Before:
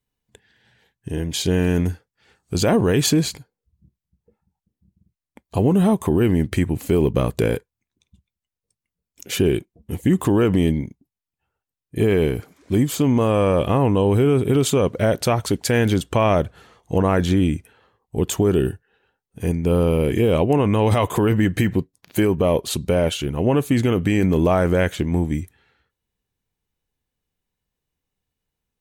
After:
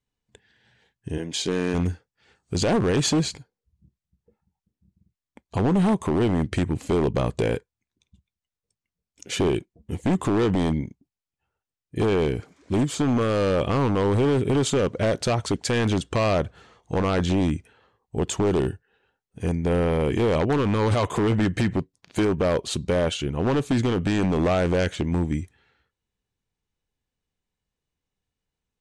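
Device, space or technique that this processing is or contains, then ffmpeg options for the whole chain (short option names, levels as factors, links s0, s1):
synthesiser wavefolder: -filter_complex "[0:a]asplit=3[s0][s1][s2];[s0]afade=t=out:st=1.17:d=0.02[s3];[s1]highpass=210,afade=t=in:st=1.17:d=0.02,afade=t=out:st=1.73:d=0.02[s4];[s2]afade=t=in:st=1.73:d=0.02[s5];[s3][s4][s5]amix=inputs=3:normalize=0,aeval=exprs='0.237*(abs(mod(val(0)/0.237+3,4)-2)-1)':c=same,lowpass=f=8500:w=0.5412,lowpass=f=8500:w=1.3066,volume=0.75"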